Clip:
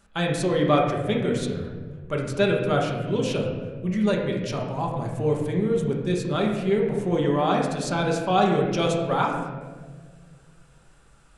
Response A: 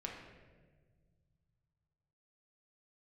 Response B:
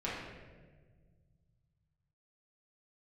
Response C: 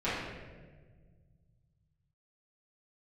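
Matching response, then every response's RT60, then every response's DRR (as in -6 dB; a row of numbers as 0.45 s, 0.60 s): A; 1.6 s, 1.5 s, 1.5 s; -1.5 dB, -8.5 dB, -13.5 dB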